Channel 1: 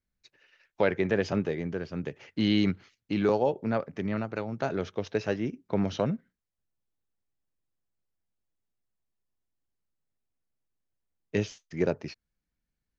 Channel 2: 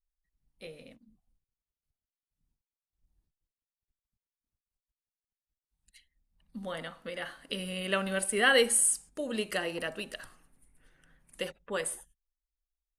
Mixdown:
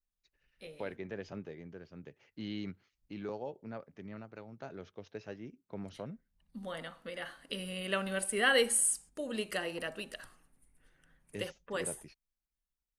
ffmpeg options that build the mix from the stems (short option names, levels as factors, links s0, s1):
-filter_complex "[0:a]volume=0.168[s0];[1:a]volume=0.668[s1];[s0][s1]amix=inputs=2:normalize=0"